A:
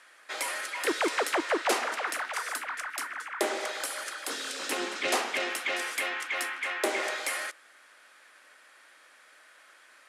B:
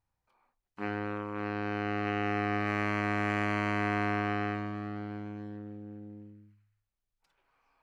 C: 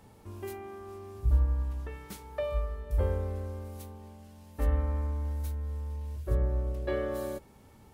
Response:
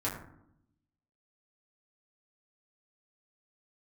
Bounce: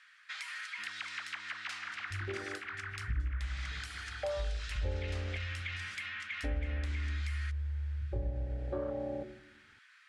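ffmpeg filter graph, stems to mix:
-filter_complex "[0:a]highpass=f=1.4k:w=0.5412,highpass=f=1.4k:w=1.3066,acompressor=threshold=-35dB:ratio=4,volume=-2.5dB[a];[1:a]equalizer=f=460:w=1.7:g=-13,acompressor=threshold=-46dB:ratio=2.5,volume=-17.5dB[b];[2:a]afwtdn=0.0251,adelay=1850,volume=-2dB,asplit=2[c][d];[d]volume=-11dB[e];[3:a]atrim=start_sample=2205[f];[e][f]afir=irnorm=-1:irlink=0[g];[a][b][c][g]amix=inputs=4:normalize=0,lowpass=4.7k,acompressor=threshold=-34dB:ratio=3"

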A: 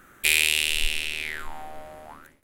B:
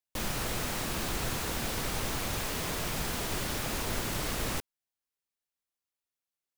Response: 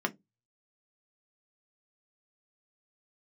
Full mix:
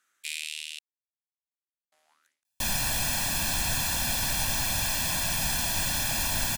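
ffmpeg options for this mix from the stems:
-filter_complex "[0:a]bandpass=f=5.5k:t=q:w=1.2:csg=0,volume=-8.5dB,asplit=3[a][b][c];[a]atrim=end=0.79,asetpts=PTS-STARTPTS,afade=t=out:st=0.786:d=0.004:c=hsin[d];[b]atrim=start=0.79:end=1.92,asetpts=PTS-STARTPTS,volume=0[e];[c]atrim=start=1.92,asetpts=PTS-STARTPTS,afade=t=in:d=0.004:c=hsin[f];[d][e][f]concat=n=3:v=0:a=1[g];[1:a]highshelf=f=2.1k:g=9.5,aecho=1:1:1.2:0.92,adelay=2450,volume=-2.5dB[h];[g][h]amix=inputs=2:normalize=0"

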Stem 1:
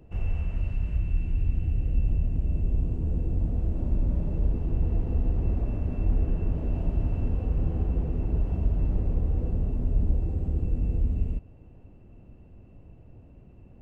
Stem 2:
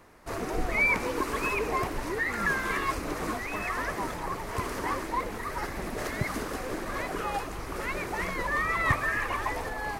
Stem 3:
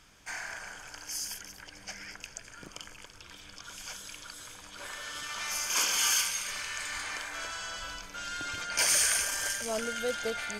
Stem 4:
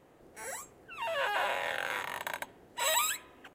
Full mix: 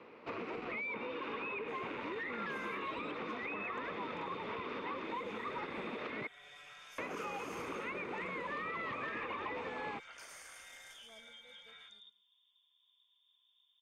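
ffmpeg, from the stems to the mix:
-filter_complex "[0:a]highpass=f=210:p=1,adelay=700,volume=-17dB[a];[1:a]asoftclip=type=hard:threshold=-24.5dB,volume=0.5dB,asplit=3[b][c][d];[b]atrim=end=6.27,asetpts=PTS-STARTPTS,afade=t=out:st=6.266:d=0.004:c=hsin[e];[c]atrim=start=6.27:end=6.98,asetpts=PTS-STARTPTS,volume=0[f];[d]atrim=start=6.98,asetpts=PTS-STARTPTS,afade=t=in:d=0.004:c=hsin[g];[e][f][g]concat=n=3:v=0:a=1[h];[2:a]adelay=1300,volume=-6.5dB,afade=t=out:st=10.92:d=0.39:silence=0.446684,asplit=2[i][j];[j]volume=-19dB[k];[3:a]volume=-7dB[l];[h][l]amix=inputs=2:normalize=0,highpass=220,equalizer=f=220:t=q:w=4:g=4,equalizer=f=480:t=q:w=4:g=7,equalizer=f=700:t=q:w=4:g=-6,equalizer=f=1.7k:t=q:w=4:g=-8,equalizer=f=2.5k:t=q:w=4:g=7,lowpass=f=3.5k:w=0.5412,lowpass=f=3.5k:w=1.3066,alimiter=level_in=3dB:limit=-24dB:level=0:latency=1:release=180,volume=-3dB,volume=0dB[m];[a][i]amix=inputs=2:normalize=0,lowpass=f=3.1k:t=q:w=0.5098,lowpass=f=3.1k:t=q:w=0.6013,lowpass=f=3.1k:t=q:w=0.9,lowpass=f=3.1k:t=q:w=2.563,afreqshift=-3700,acompressor=threshold=-52dB:ratio=10,volume=0dB[n];[k]aecho=0:1:107|214|321|428:1|0.24|0.0576|0.0138[o];[m][n][o]amix=inputs=3:normalize=0,acrossover=split=270|1000|2200[p][q][r][s];[p]acompressor=threshold=-48dB:ratio=4[t];[q]acompressor=threshold=-46dB:ratio=4[u];[r]acompressor=threshold=-42dB:ratio=4[v];[s]acompressor=threshold=-54dB:ratio=4[w];[t][u][v][w]amix=inputs=4:normalize=0"

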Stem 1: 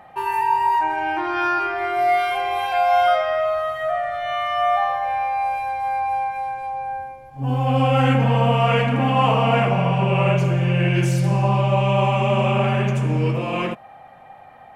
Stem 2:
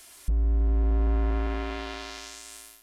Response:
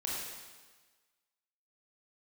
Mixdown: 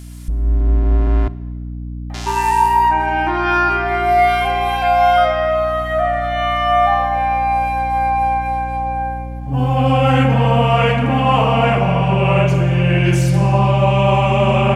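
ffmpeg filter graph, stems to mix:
-filter_complex "[0:a]adelay=2100,volume=-1dB[a];[1:a]volume=2dB,asplit=3[b][c][d];[b]atrim=end=1.28,asetpts=PTS-STARTPTS,afade=t=out:st=1.276:d=0.004:c=hsin[e];[c]atrim=start=1.28:end=2.14,asetpts=PTS-STARTPTS,volume=0[f];[d]atrim=start=2.14,asetpts=PTS-STARTPTS,afade=t=in:d=0.004:c=hsin[g];[e][f][g]concat=n=3:v=0:a=1,asplit=2[h][i];[i]volume=-19.5dB[j];[2:a]atrim=start_sample=2205[k];[j][k]afir=irnorm=-1:irlink=0[l];[a][h][l]amix=inputs=3:normalize=0,aeval=exprs='val(0)+0.0251*(sin(2*PI*60*n/s)+sin(2*PI*2*60*n/s)/2+sin(2*PI*3*60*n/s)/3+sin(2*PI*4*60*n/s)/4+sin(2*PI*5*60*n/s)/5)':c=same,dynaudnorm=f=300:g=3:m=7dB"

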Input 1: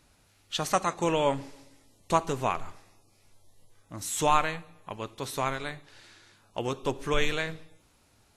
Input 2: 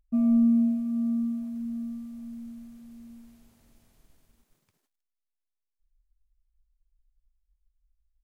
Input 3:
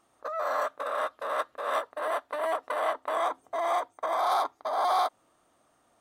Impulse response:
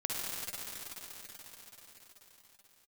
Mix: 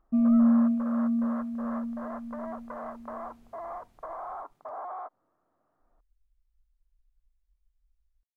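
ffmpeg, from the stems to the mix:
-filter_complex "[1:a]volume=0.5dB[a];[2:a]lowpass=f=1.6k:w=0.5412,lowpass=f=1.6k:w=1.3066,acompressor=threshold=-28dB:ratio=6,volume=-7dB[b];[a][b]amix=inputs=2:normalize=0,highshelf=f=4.9k:g=-10.5"

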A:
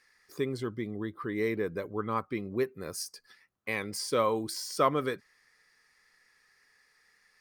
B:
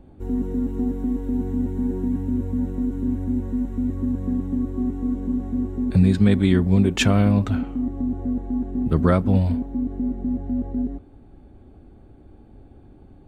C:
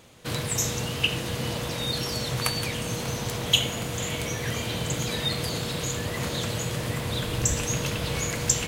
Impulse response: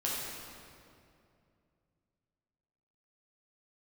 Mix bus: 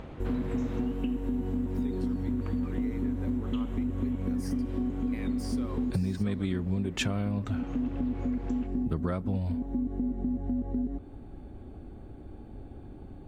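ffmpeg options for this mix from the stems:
-filter_complex "[0:a]acompressor=threshold=-30dB:ratio=6,adelay=1450,volume=-4dB,asplit=2[a][b];[b]volume=-23dB[c];[1:a]volume=2.5dB[d];[2:a]lowpass=1.6k,acompressor=mode=upward:threshold=-39dB:ratio=2.5,volume=-1.5dB,afade=t=out:st=0.8:d=0.21:silence=0.354813,asplit=2[e][f];[f]volume=-16dB[g];[3:a]atrim=start_sample=2205[h];[c][g]amix=inputs=2:normalize=0[i];[i][h]afir=irnorm=-1:irlink=0[j];[a][d][e][j]amix=inputs=4:normalize=0,acompressor=threshold=-28dB:ratio=5"

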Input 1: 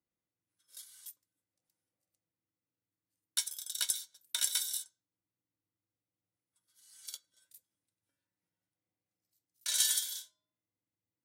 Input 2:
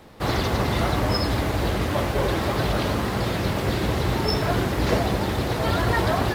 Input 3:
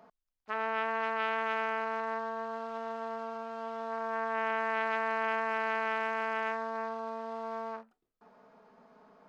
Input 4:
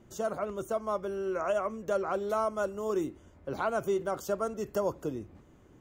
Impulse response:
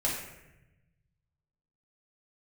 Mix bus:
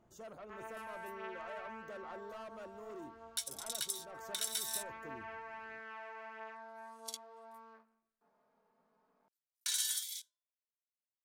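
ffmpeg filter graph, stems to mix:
-filter_complex "[0:a]highpass=690,afwtdn=0.00282,volume=1dB[a];[2:a]flanger=delay=18.5:depth=5.2:speed=0.52,volume=-14.5dB,asplit=2[b][c];[c]volume=-17.5dB[d];[3:a]asoftclip=type=tanh:threshold=-31.5dB,volume=-13.5dB[e];[4:a]atrim=start_sample=2205[f];[d][f]afir=irnorm=-1:irlink=0[g];[a][b][e][g]amix=inputs=4:normalize=0,alimiter=limit=-23dB:level=0:latency=1:release=362"

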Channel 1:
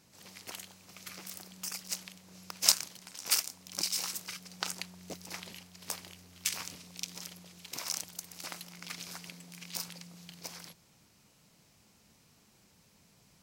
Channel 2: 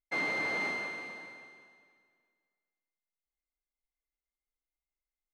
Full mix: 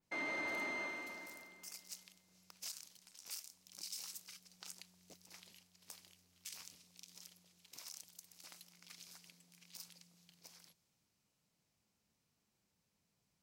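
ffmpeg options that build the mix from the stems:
-filter_complex "[0:a]adynamicequalizer=threshold=0.00282:dfrequency=2600:dqfactor=0.7:tfrequency=2600:tqfactor=0.7:attack=5:release=100:ratio=0.375:range=4:mode=boostabove:tftype=highshelf,volume=-18.5dB[a];[1:a]aecho=1:1:3.2:0.46,volume=-4.5dB[b];[a][b]amix=inputs=2:normalize=0,alimiter=level_in=9dB:limit=-24dB:level=0:latency=1:release=55,volume=-9dB"

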